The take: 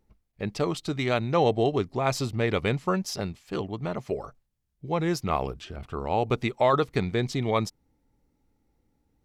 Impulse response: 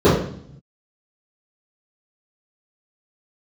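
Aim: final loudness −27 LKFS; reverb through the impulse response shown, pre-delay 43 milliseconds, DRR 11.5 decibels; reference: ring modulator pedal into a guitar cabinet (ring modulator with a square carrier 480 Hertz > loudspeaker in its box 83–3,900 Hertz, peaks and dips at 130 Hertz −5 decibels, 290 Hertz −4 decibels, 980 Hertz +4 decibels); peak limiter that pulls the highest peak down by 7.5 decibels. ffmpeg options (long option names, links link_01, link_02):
-filter_complex "[0:a]alimiter=limit=-18.5dB:level=0:latency=1,asplit=2[link_01][link_02];[1:a]atrim=start_sample=2205,adelay=43[link_03];[link_02][link_03]afir=irnorm=-1:irlink=0,volume=-39dB[link_04];[link_01][link_04]amix=inputs=2:normalize=0,aeval=exprs='val(0)*sgn(sin(2*PI*480*n/s))':channel_layout=same,highpass=83,equalizer=frequency=130:width_type=q:width=4:gain=-5,equalizer=frequency=290:width_type=q:width=4:gain=-4,equalizer=frequency=980:width_type=q:width=4:gain=4,lowpass=frequency=3900:width=0.5412,lowpass=frequency=3900:width=1.3066,volume=1.5dB"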